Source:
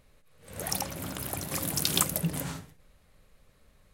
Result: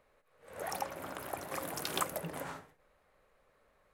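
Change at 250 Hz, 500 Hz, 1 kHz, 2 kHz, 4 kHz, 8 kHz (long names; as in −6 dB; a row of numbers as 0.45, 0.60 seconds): −10.5, −1.0, +0.5, −3.0, −11.0, −13.0 decibels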